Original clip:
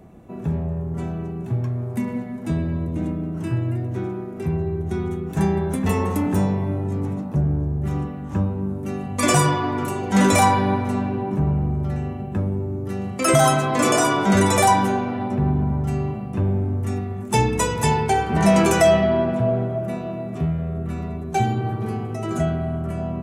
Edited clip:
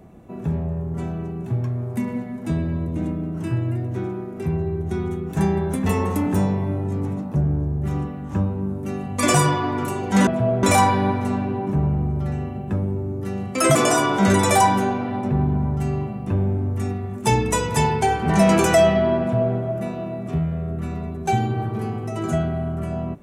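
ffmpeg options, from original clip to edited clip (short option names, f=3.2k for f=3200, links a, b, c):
-filter_complex "[0:a]asplit=4[a][b][c][d];[a]atrim=end=10.272[e];[b]atrim=start=19.268:end=19.632[f];[c]atrim=start=10.268:end=13.392[g];[d]atrim=start=13.818[h];[e][f]acrossfade=d=0.004:c1=hsin:c2=hsin[i];[i][g]acrossfade=d=0.004:c1=hsin:c2=hsin[j];[j][h]acrossfade=d=0.004:c1=hsin:c2=hsin"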